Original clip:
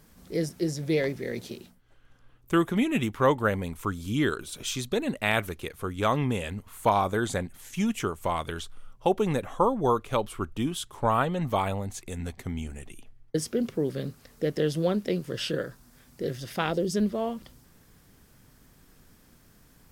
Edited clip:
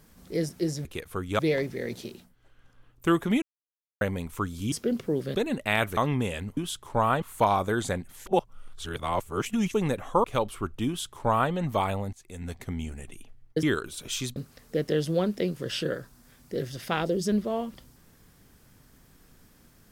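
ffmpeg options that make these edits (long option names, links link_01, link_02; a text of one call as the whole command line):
ffmpeg -i in.wav -filter_complex "[0:a]asplit=16[link_01][link_02][link_03][link_04][link_05][link_06][link_07][link_08][link_09][link_10][link_11][link_12][link_13][link_14][link_15][link_16];[link_01]atrim=end=0.852[link_17];[link_02]atrim=start=5.528:end=6.072[link_18];[link_03]atrim=start=0.848:end=2.88,asetpts=PTS-STARTPTS,afade=type=out:start_time=2.028:duration=0.004:curve=hsin[link_19];[link_04]atrim=start=2.88:end=3.47,asetpts=PTS-STARTPTS,volume=0[link_20];[link_05]atrim=start=3.47:end=4.182,asetpts=PTS-STARTPTS,afade=type=in:duration=0.004:curve=hsin[link_21];[link_06]atrim=start=13.408:end=14.042[link_22];[link_07]atrim=start=4.908:end=5.532[link_23];[link_08]atrim=start=6.068:end=6.672[link_24];[link_09]atrim=start=10.648:end=11.302[link_25];[link_10]atrim=start=6.668:end=7.712[link_26];[link_11]atrim=start=7.708:end=9.192,asetpts=PTS-STARTPTS,areverse[link_27];[link_12]atrim=start=9.188:end=9.692[link_28];[link_13]atrim=start=10.018:end=11.91,asetpts=PTS-STARTPTS,afade=type=out:start_time=1.888:duration=0.004:curve=hsin:silence=0.0891251[link_29];[link_14]atrim=start=11.91:end=13.412,asetpts=PTS-STARTPTS,afade=type=in:duration=0.42:silence=0.0891251[link_30];[link_15]atrim=start=4.178:end=4.912[link_31];[link_16]atrim=start=14.038[link_32];[link_17][link_18]acrossfade=duration=0.004:curve1=hsin:curve2=hsin[link_33];[link_19][link_20][link_21]concat=n=3:v=0:a=1[link_34];[link_33][link_34]acrossfade=duration=0.004:curve1=hsin:curve2=hsin[link_35];[link_35][link_22]acrossfade=duration=0.004:curve1=hsin:curve2=hsin[link_36];[link_36][link_23]acrossfade=duration=0.004:curve1=hsin:curve2=hsin[link_37];[link_37][link_24]acrossfade=duration=0.004:curve1=hsin:curve2=hsin[link_38];[link_38][link_25]acrossfade=duration=0.004:curve1=hsin:curve2=hsin[link_39];[link_39][link_26]acrossfade=duration=0.004:curve1=hsin:curve2=hsin[link_40];[link_40][link_27]acrossfade=duration=0.004:curve1=hsin:curve2=hsin[link_41];[link_41][link_28]acrossfade=duration=0.004:curve1=hsin:curve2=hsin[link_42];[link_29][link_30]concat=n=2:v=0:a=1[link_43];[link_42][link_43]acrossfade=duration=0.004:curve1=hsin:curve2=hsin[link_44];[link_44][link_31]acrossfade=duration=0.004:curve1=hsin:curve2=hsin[link_45];[link_45][link_32]acrossfade=duration=0.004:curve1=hsin:curve2=hsin" out.wav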